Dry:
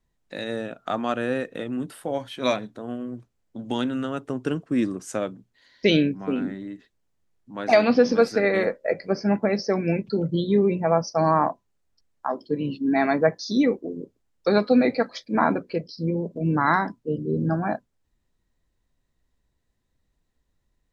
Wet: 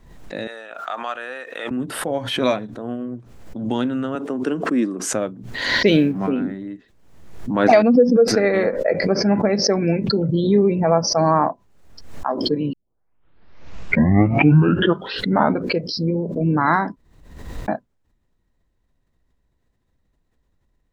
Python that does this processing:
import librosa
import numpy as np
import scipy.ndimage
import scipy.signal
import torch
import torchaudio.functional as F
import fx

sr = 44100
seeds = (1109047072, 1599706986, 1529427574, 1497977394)

y = fx.highpass(x, sr, hz=980.0, slope=12, at=(0.47, 1.71))
y = fx.highpass(y, sr, hz=200.0, slope=24, at=(4.15, 5.13))
y = fx.law_mismatch(y, sr, coded='mu', at=(5.87, 6.29))
y = fx.spec_expand(y, sr, power=1.9, at=(7.82, 8.28))
y = fx.edit(y, sr, fx.tape_start(start_s=12.73, length_s=2.95),
    fx.room_tone_fill(start_s=16.96, length_s=0.72), tone=tone)
y = fx.high_shelf(y, sr, hz=2700.0, db=-8.5)
y = fx.pre_swell(y, sr, db_per_s=56.0)
y = y * 10.0 ** (4.0 / 20.0)